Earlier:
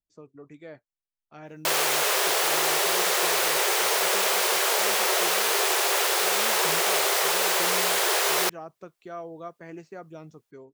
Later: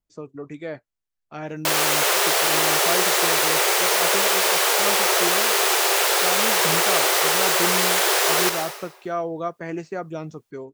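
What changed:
speech +11.0 dB; reverb: on, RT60 1.0 s

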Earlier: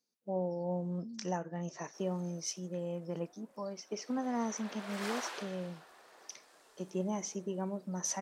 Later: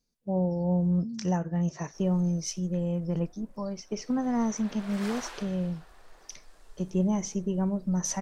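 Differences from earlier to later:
speech +3.5 dB; master: remove HPF 290 Hz 12 dB/oct

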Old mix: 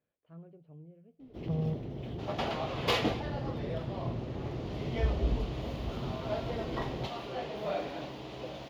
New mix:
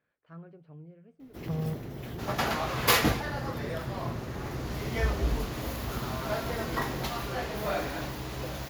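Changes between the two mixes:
speech +3.0 dB; second sound: remove HPF 360 Hz 6 dB/oct; master: remove EQ curve 640 Hz 0 dB, 1600 Hz -12 dB, 3100 Hz -2 dB, 13000 Hz -27 dB

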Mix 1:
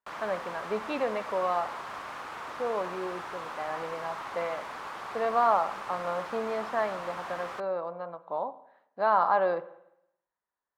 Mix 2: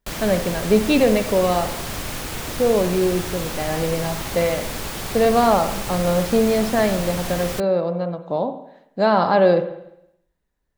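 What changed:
speech: send +6.5 dB; master: remove band-pass 1100 Hz, Q 2.2

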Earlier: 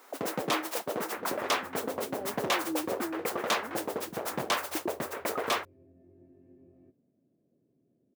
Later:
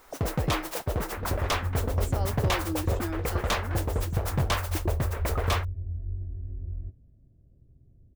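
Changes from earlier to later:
speech: remove running mean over 38 samples; master: remove HPF 220 Hz 24 dB/oct

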